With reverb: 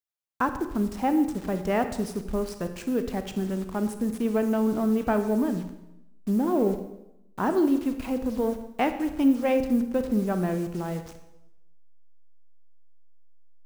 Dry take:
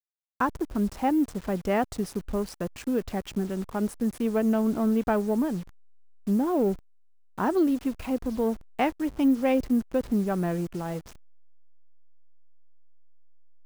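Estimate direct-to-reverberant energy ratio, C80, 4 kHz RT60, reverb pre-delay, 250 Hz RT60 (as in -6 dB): 8.0 dB, 12.0 dB, 0.80 s, 29 ms, 0.95 s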